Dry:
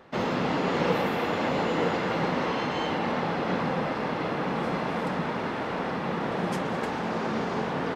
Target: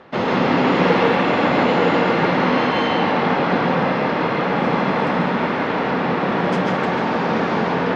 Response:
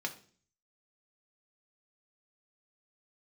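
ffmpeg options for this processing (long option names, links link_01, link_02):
-filter_complex "[0:a]lowpass=4600,lowshelf=frequency=63:gain=-9,asplit=2[link_01][link_02];[1:a]atrim=start_sample=2205,adelay=139[link_03];[link_02][link_03]afir=irnorm=-1:irlink=0,volume=-2.5dB[link_04];[link_01][link_04]amix=inputs=2:normalize=0,volume=7.5dB"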